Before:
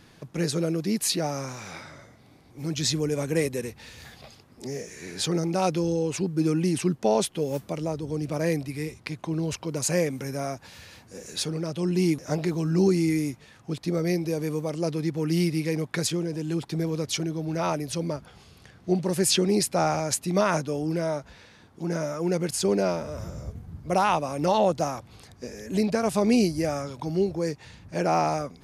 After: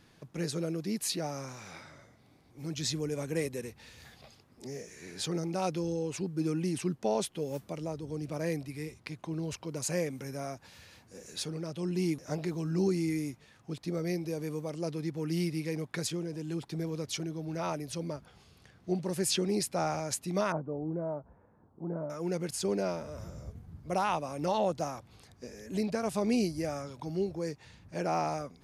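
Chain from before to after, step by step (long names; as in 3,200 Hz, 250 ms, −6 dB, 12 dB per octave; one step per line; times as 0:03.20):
0:20.52–0:22.10: low-pass filter 1,100 Hz 24 dB per octave
level −7.5 dB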